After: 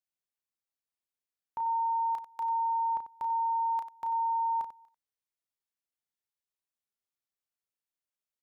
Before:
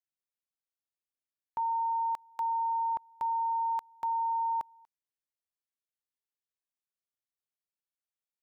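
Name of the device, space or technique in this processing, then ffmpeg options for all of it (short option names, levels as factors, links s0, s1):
slapback doubling: -filter_complex "[0:a]asplit=3[s0][s1][s2];[s1]adelay=33,volume=0.447[s3];[s2]adelay=93,volume=0.266[s4];[s0][s3][s4]amix=inputs=3:normalize=0,volume=0.75"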